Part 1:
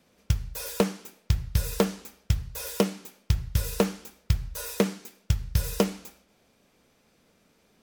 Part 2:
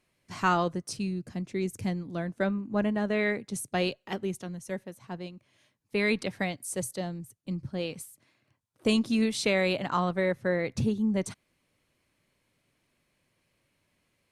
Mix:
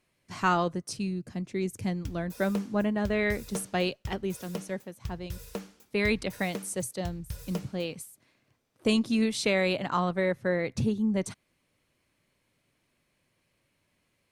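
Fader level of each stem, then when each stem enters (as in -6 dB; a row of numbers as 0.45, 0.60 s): -13.5, 0.0 dB; 1.75, 0.00 s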